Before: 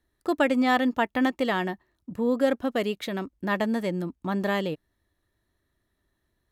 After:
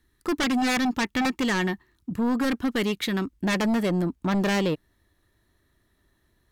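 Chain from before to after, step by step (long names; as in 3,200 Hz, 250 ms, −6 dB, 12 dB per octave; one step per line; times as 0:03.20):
parametric band 620 Hz −13.5 dB 0.75 octaves, from 0:03.47 −2.5 dB
sine wavefolder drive 11 dB, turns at −13 dBFS
level −7 dB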